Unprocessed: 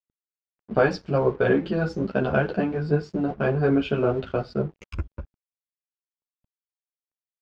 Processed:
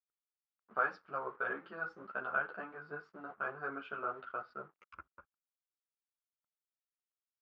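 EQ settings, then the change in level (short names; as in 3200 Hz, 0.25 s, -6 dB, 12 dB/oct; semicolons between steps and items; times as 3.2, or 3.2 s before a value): band-pass 1300 Hz, Q 4.8; -1.0 dB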